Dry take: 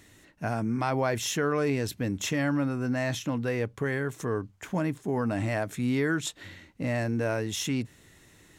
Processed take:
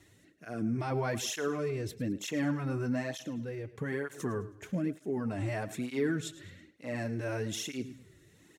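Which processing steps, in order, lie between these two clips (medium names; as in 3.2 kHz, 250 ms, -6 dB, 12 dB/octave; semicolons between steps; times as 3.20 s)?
peaking EQ 360 Hz +3.5 dB 0.77 oct; in parallel at +3 dB: peak limiter -23 dBFS, peak gain reduction 8 dB; 3.12–3.74 s: on the sum: compression 2:1, threshold -25 dBFS, peak gain reduction 4.5 dB; rotary cabinet horn 0.65 Hz; on a send: feedback delay 107 ms, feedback 39%, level -16 dB; on the sum: cancelling through-zero flanger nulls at 1.1 Hz, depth 4.8 ms; trim -7.5 dB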